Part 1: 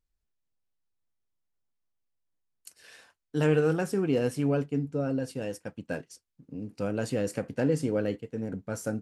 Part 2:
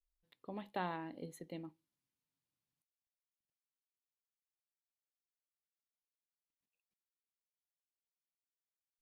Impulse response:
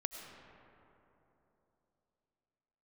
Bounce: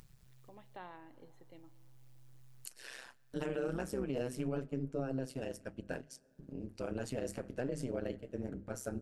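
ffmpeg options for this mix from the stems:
-filter_complex "[0:a]bandreject=frequency=50:width_type=h:width=6,bandreject=frequency=100:width_type=h:width=6,bandreject=frequency=150:width_type=h:width=6,bandreject=frequency=200:width_type=h:width=6,bandreject=frequency=250:width_type=h:width=6,acompressor=mode=upward:threshold=-33dB:ratio=2.5,tremolo=f=130:d=0.919,volume=-3dB,asplit=2[link_01][link_02];[link_02]volume=-22dB[link_03];[1:a]lowpass=4000,equalizer=frequency=180:width=1.5:gain=-6.5,volume=-11dB,asplit=3[link_04][link_05][link_06];[link_05]volume=-12dB[link_07];[link_06]apad=whole_len=397572[link_08];[link_01][link_08]sidechaincompress=threshold=-54dB:ratio=8:attack=12:release=1470[link_09];[2:a]atrim=start_sample=2205[link_10];[link_03][link_07]amix=inputs=2:normalize=0[link_11];[link_11][link_10]afir=irnorm=-1:irlink=0[link_12];[link_09][link_04][link_12]amix=inputs=3:normalize=0,alimiter=level_in=3dB:limit=-24dB:level=0:latency=1:release=81,volume=-3dB"

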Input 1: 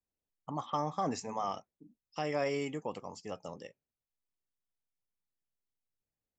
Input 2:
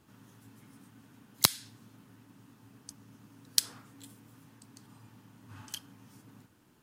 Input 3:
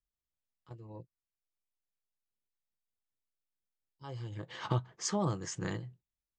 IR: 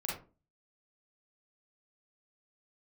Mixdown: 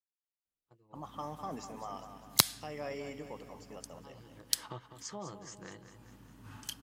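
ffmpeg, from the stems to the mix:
-filter_complex "[0:a]adelay=450,volume=-8dB,asplit=2[link_01][link_02];[link_02]volume=-9.5dB[link_03];[1:a]aeval=exprs='val(0)+0.001*(sin(2*PI*50*n/s)+sin(2*PI*2*50*n/s)/2+sin(2*PI*3*50*n/s)/3+sin(2*PI*4*50*n/s)/4+sin(2*PI*5*50*n/s)/5)':channel_layout=same,adelay=950,volume=-0.5dB[link_04];[2:a]highpass=frequency=330:poles=1,agate=range=-33dB:threshold=-51dB:ratio=3:detection=peak,volume=-8.5dB,asplit=3[link_05][link_06][link_07];[link_06]volume=-10.5dB[link_08];[link_07]apad=whole_len=342769[link_09];[link_04][link_09]sidechaincompress=threshold=-55dB:ratio=8:attack=9.9:release=370[link_10];[link_03][link_08]amix=inputs=2:normalize=0,aecho=0:1:201|402|603|804|1005|1206|1407|1608:1|0.52|0.27|0.141|0.0731|0.038|0.0198|0.0103[link_11];[link_01][link_10][link_05][link_11]amix=inputs=4:normalize=0"

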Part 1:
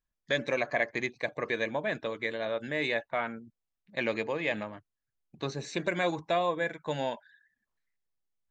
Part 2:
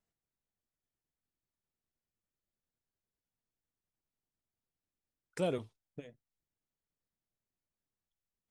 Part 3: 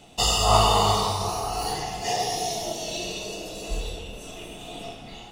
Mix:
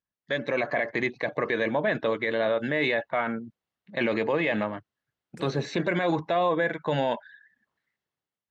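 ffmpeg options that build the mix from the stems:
ffmpeg -i stem1.wav -i stem2.wav -filter_complex "[0:a]lowpass=3400,bandreject=frequency=2400:width=13,volume=-1.5dB[link_01];[1:a]volume=-17.5dB[link_02];[link_01][link_02]amix=inputs=2:normalize=0,highpass=100,dynaudnorm=framelen=210:gausssize=5:maxgain=11.5dB,alimiter=limit=-16dB:level=0:latency=1:release=24" out.wav

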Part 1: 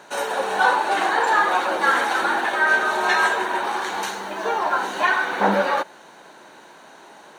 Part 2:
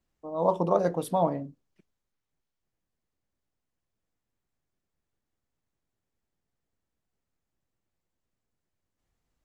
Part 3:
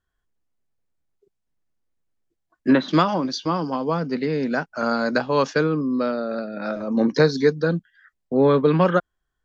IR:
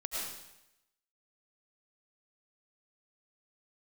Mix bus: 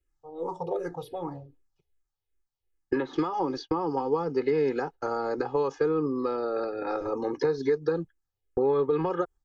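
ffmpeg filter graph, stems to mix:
-filter_complex "[0:a]lowpass=3100,volume=24.5dB,asoftclip=hard,volume=-24.5dB,volume=-12dB[link_01];[1:a]asplit=2[link_02][link_03];[link_03]afreqshift=-2.6[link_04];[link_02][link_04]amix=inputs=2:normalize=1,volume=-5dB,asplit=2[link_05][link_06];[2:a]equalizer=frequency=400:width_type=o:width=0.67:gain=5,equalizer=frequency=1000:width_type=o:width=0.67:gain=9,equalizer=frequency=4000:width_type=o:width=0.67:gain=-5,adelay=250,volume=-2dB[link_07];[link_06]apad=whole_len=325559[link_08];[link_01][link_08]sidechaingate=range=-31dB:threshold=-59dB:ratio=16:detection=peak[link_09];[link_09][link_07]amix=inputs=2:normalize=0,agate=range=-58dB:threshold=-32dB:ratio=16:detection=peak,alimiter=limit=-14.5dB:level=0:latency=1:release=334,volume=0dB[link_10];[link_05][link_10]amix=inputs=2:normalize=0,acrossover=split=960|4300[link_11][link_12][link_13];[link_11]acompressor=threshold=-27dB:ratio=4[link_14];[link_12]acompressor=threshold=-43dB:ratio=4[link_15];[link_13]acompressor=threshold=-59dB:ratio=4[link_16];[link_14][link_15][link_16]amix=inputs=3:normalize=0,lowshelf=frequency=70:gain=10,aecho=1:1:2.4:0.94"

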